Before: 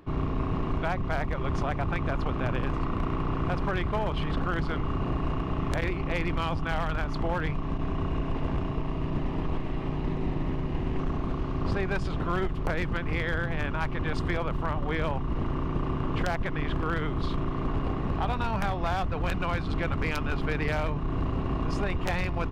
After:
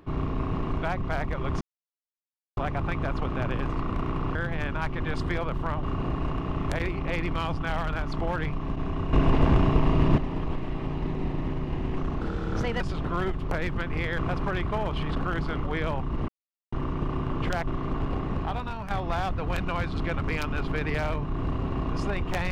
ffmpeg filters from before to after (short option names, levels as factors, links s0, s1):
-filter_complex "[0:a]asplit=13[s0][s1][s2][s3][s4][s5][s6][s7][s8][s9][s10][s11][s12];[s0]atrim=end=1.61,asetpts=PTS-STARTPTS,afade=t=out:st=1.606:d=0.004:c=hsin,apad=pad_dur=0.96[s13];[s1]atrim=start=1.61:end=3.392,asetpts=PTS-STARTPTS,afade=t=in:d=0.004:c=hsin[s14];[s2]atrim=start=13.338:end=14.822[s15];[s3]atrim=start=4.848:end=8.152[s16];[s4]atrim=start=8.148:end=9.202,asetpts=PTS-STARTPTS,volume=2.82[s17];[s5]atrim=start=9.198:end=11.234[s18];[s6]atrim=start=11.23:end=11.96,asetpts=PTS-STARTPTS,asetrate=54243,aresample=44100,atrim=end_sample=26173,asetpts=PTS-STARTPTS[s19];[s7]atrim=start=11.956:end=13.342[s20];[s8]atrim=start=3.388:end=4.852[s21];[s9]atrim=start=14.818:end=15.46,asetpts=PTS-STARTPTS,afade=t=out:st=0.638:d=0.004:c=hsin,apad=pad_dur=0.44[s22];[s10]atrim=start=15.46:end=16.412,asetpts=PTS-STARTPTS,afade=t=in:d=0.004:c=hsin[s23];[s11]atrim=start=17.408:end=18.64,asetpts=PTS-STARTPTS,afade=t=out:st=0.652:d=0.58:silence=0.354813[s24];[s12]atrim=start=18.64,asetpts=PTS-STARTPTS,afade=t=in:d=0.004:c=hsin:silence=0.354813[s25];[s13][s14]concat=n=2:v=0:a=1[s26];[s26][s15]acrossfade=d=0.004:c1=hsin:c2=hsin[s27];[s27][s16]acrossfade=d=0.004:c1=hsin:c2=hsin[s28];[s28][s17]acrossfade=d=0.004:c1=hsin:c2=hsin[s29];[s29][s18]acrossfade=d=0.004:c1=hsin:c2=hsin[s30];[s30][s19]acrossfade=d=0.004:c1=hsin:c2=hsin[s31];[s31][s20]acrossfade=d=0.004:c1=hsin:c2=hsin[s32];[s32][s21]acrossfade=d=0.004:c1=hsin:c2=hsin[s33];[s22][s23]concat=n=2:v=0:a=1[s34];[s33][s34]acrossfade=d=0.004:c1=hsin:c2=hsin[s35];[s24][s25]concat=n=2:v=0:a=1[s36];[s35][s36]acrossfade=d=0.004:c1=hsin:c2=hsin"